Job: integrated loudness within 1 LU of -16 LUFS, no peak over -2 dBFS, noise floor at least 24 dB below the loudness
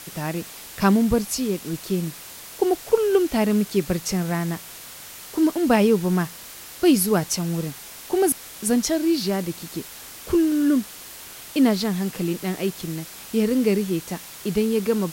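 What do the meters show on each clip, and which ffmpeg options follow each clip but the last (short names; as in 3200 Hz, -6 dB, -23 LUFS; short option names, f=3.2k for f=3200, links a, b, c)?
noise floor -40 dBFS; noise floor target -47 dBFS; loudness -23.0 LUFS; peak -4.5 dBFS; loudness target -16.0 LUFS
-> -af "afftdn=nr=7:nf=-40"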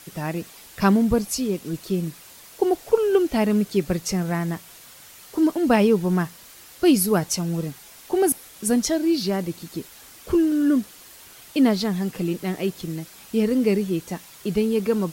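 noise floor -46 dBFS; noise floor target -47 dBFS
-> -af "afftdn=nr=6:nf=-46"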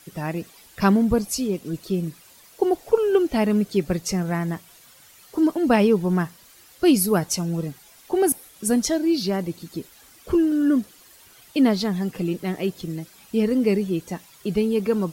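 noise floor -51 dBFS; loudness -22.5 LUFS; peak -5.0 dBFS; loudness target -16.0 LUFS
-> -af "volume=6.5dB,alimiter=limit=-2dB:level=0:latency=1"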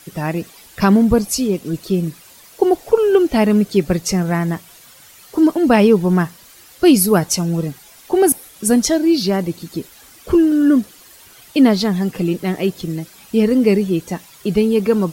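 loudness -16.5 LUFS; peak -2.0 dBFS; noise floor -45 dBFS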